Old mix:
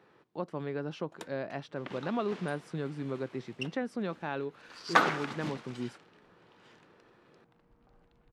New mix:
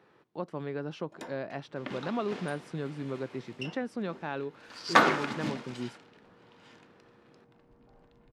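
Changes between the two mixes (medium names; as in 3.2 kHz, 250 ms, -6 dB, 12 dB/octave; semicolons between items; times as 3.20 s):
second sound +4.5 dB; reverb: on, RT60 0.45 s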